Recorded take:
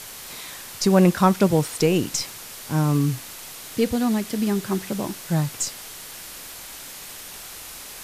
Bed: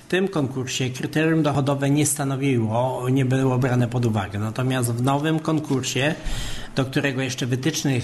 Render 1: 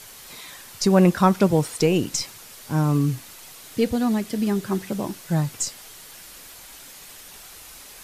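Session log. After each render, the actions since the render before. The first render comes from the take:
broadband denoise 6 dB, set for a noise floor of −39 dBFS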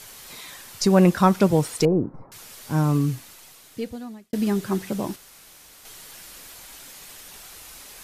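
0:01.85–0:02.32: inverse Chebyshev low-pass filter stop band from 2,900 Hz, stop band 50 dB
0:02.87–0:04.33: fade out
0:05.16–0:05.85: fill with room tone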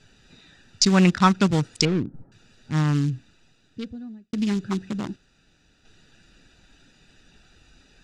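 adaptive Wiener filter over 41 samples
drawn EQ curve 250 Hz 0 dB, 560 Hz −9 dB, 1,200 Hz +3 dB, 3,700 Hz +12 dB, 7,200 Hz +8 dB, 13,000 Hz −16 dB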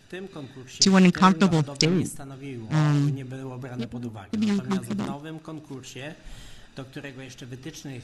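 mix in bed −16 dB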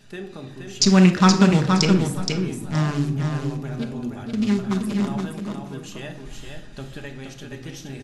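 repeating echo 472 ms, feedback 17%, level −5 dB
rectangular room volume 1,000 cubic metres, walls furnished, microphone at 1.3 metres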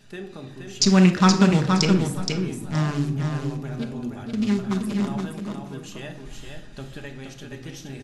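level −1.5 dB

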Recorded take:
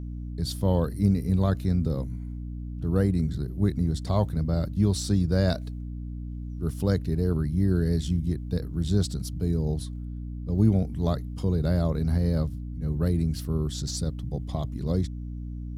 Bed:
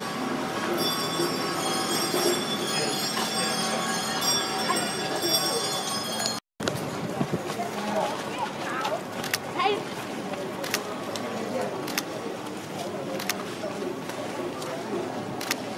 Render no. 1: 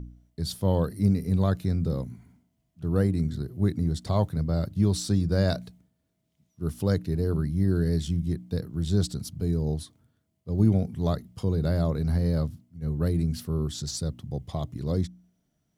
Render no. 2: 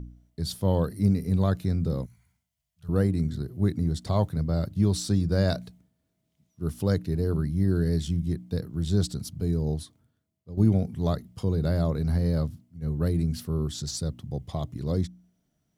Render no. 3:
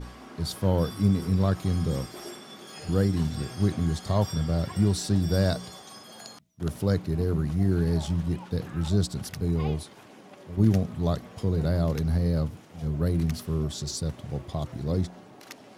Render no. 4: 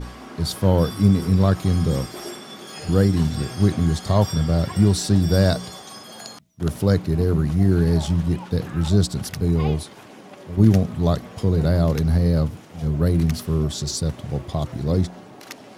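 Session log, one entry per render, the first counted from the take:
hum removal 60 Hz, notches 5
0:02.06–0:02.89: guitar amp tone stack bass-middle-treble 10-0-10; 0:09.75–0:10.57: fade out, to −11 dB
mix in bed −16.5 dB
level +6.5 dB

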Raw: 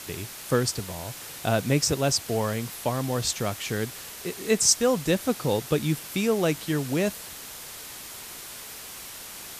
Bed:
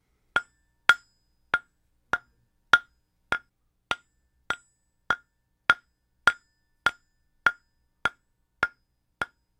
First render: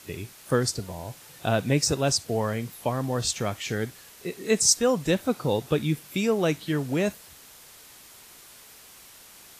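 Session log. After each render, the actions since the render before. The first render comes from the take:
noise reduction from a noise print 9 dB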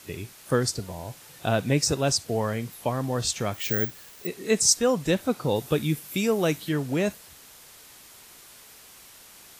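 0:03.54–0:04.27: bad sample-rate conversion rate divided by 2×, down filtered, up zero stuff
0:05.56–0:06.69: high-shelf EQ 9,000 Hz +9 dB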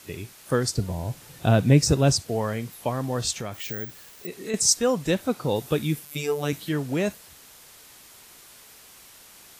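0:00.77–0:02.22: low-shelf EQ 300 Hz +10.5 dB
0:03.36–0:04.54: downward compressor 2.5 to 1, threshold −30 dBFS
0:06.05–0:06.53: phases set to zero 146 Hz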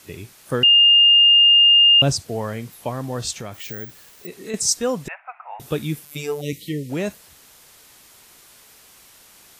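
0:00.63–0:02.02: beep over 2,820 Hz −9 dBFS
0:05.08–0:05.60: Chebyshev band-pass filter 670–2,600 Hz, order 5
0:06.41–0:06.90: linear-phase brick-wall band-stop 590–1,800 Hz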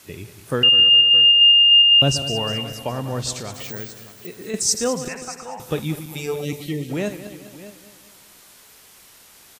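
feedback delay that plays each chunk backwards 101 ms, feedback 69%, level −11 dB
single-tap delay 616 ms −17 dB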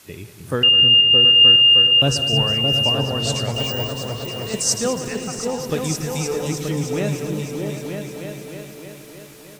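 on a send: echo whose low-pass opens from repeat to repeat 309 ms, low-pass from 200 Hz, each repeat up 2 octaves, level 0 dB
on the sum: feedback echo at a low word length 722 ms, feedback 35%, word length 7 bits, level −12.5 dB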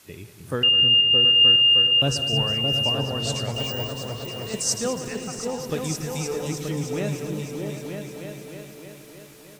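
level −4.5 dB

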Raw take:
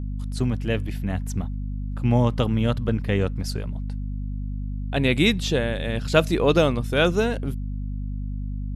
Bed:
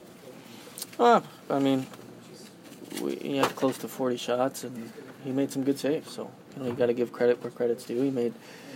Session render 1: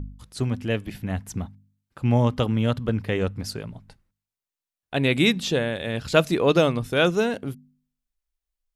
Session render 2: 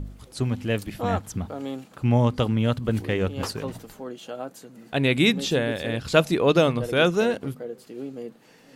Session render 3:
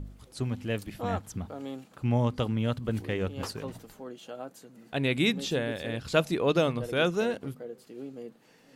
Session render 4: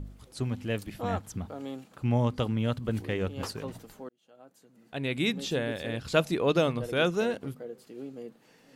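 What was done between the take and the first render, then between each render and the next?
hum removal 50 Hz, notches 5
mix in bed −8 dB
level −6 dB
0:04.09–0:05.66: fade in

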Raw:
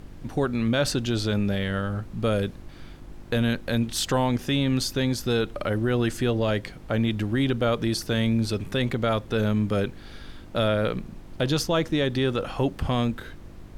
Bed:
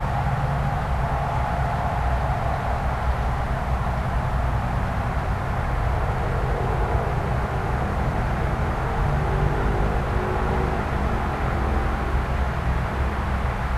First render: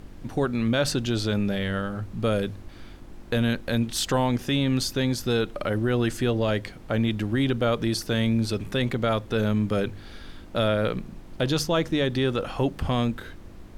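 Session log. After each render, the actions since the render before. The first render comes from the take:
hum removal 50 Hz, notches 3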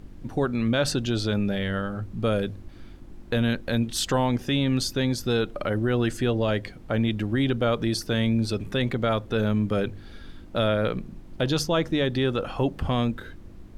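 broadband denoise 6 dB, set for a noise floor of −44 dBFS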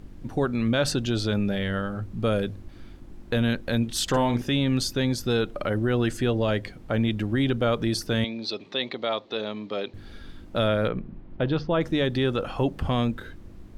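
0:04.03–0:04.48: double-tracking delay 50 ms −8.5 dB
0:08.24–0:09.94: loudspeaker in its box 400–5,300 Hz, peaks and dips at 480 Hz −3 dB, 1,500 Hz −9 dB, 4,000 Hz +9 dB
0:10.88–0:11.81: Gaussian smoothing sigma 2.8 samples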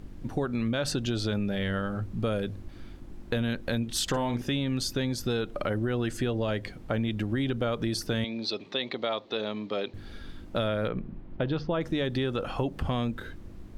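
downward compressor, threshold −25 dBFS, peak gain reduction 7 dB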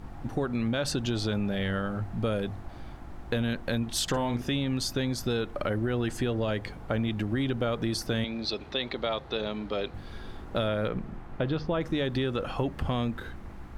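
mix in bed −24.5 dB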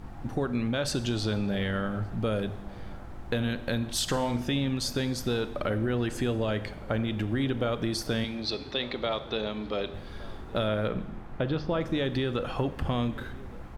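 slap from a distant wall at 200 metres, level −19 dB
four-comb reverb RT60 0.96 s, combs from 29 ms, DRR 13 dB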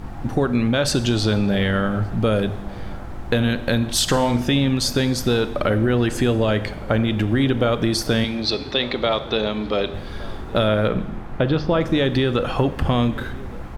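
level +9.5 dB

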